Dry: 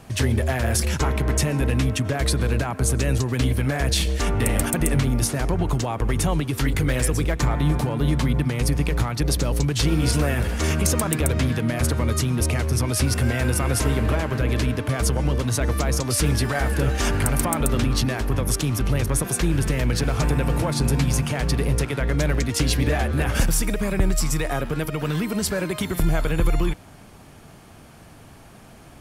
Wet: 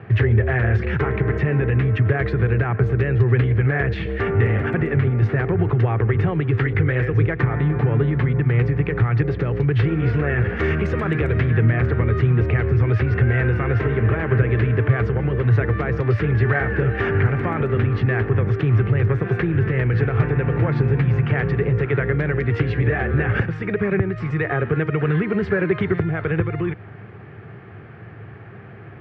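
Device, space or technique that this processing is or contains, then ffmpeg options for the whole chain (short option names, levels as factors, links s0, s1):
bass amplifier: -filter_complex "[0:a]acompressor=threshold=0.0891:ratio=6,highpass=f=85:w=0.5412,highpass=f=85:w=1.3066,equalizer=f=110:t=q:w=4:g=9,equalizer=f=260:t=q:w=4:g=-10,equalizer=f=400:t=q:w=4:g=7,equalizer=f=610:t=q:w=4:g=-7,equalizer=f=950:t=q:w=4:g=-8,equalizer=f=1800:t=q:w=4:g=5,lowpass=f=2200:w=0.5412,lowpass=f=2200:w=1.3066,asettb=1/sr,asplit=3[s0][s1][s2];[s0]atrim=end=10.564[s3];[s1]atrim=start=10.56:end=11.51,asetpts=PTS-STARTPTS,afade=t=in:d=0.004:c=qsin,afade=t=out:st=0.946:d=0.004:c=qsin,aemphasis=mode=production:type=50fm[s4];[s2]atrim=start=11.506[s5];[s3][s4]acrossfade=d=0.004:c1=hsin:c2=qsin[s6];[s6][s5]acrossfade=d=0.004:c1=qsin:c2=hsin,volume=2.11"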